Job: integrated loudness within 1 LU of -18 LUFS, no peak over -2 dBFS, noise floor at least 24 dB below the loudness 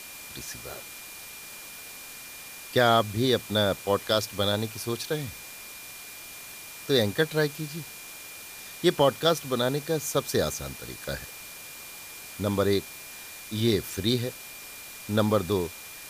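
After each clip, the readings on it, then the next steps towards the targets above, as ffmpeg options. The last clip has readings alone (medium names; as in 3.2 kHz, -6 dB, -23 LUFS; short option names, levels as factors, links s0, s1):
steady tone 2.4 kHz; tone level -47 dBFS; noise floor -43 dBFS; noise floor target -51 dBFS; loudness -27.0 LUFS; peak level -9.0 dBFS; loudness target -18.0 LUFS
-> -af "bandreject=f=2400:w=30"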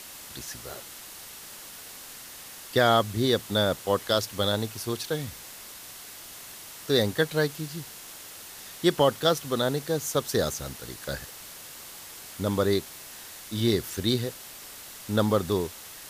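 steady tone not found; noise floor -44 dBFS; noise floor target -51 dBFS
-> -af "afftdn=nr=7:nf=-44"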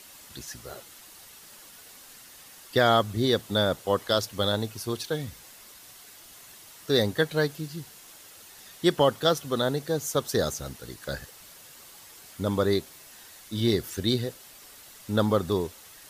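noise floor -50 dBFS; noise floor target -51 dBFS
-> -af "afftdn=nr=6:nf=-50"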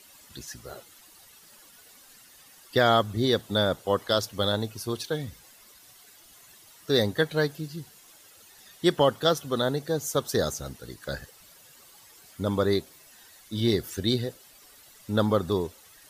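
noise floor -54 dBFS; loudness -27.0 LUFS; peak level -9.5 dBFS; loudness target -18.0 LUFS
-> -af "volume=2.82,alimiter=limit=0.794:level=0:latency=1"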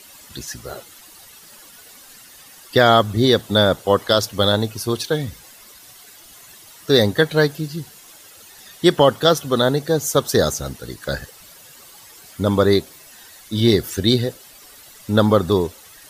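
loudness -18.5 LUFS; peak level -2.0 dBFS; noise floor -45 dBFS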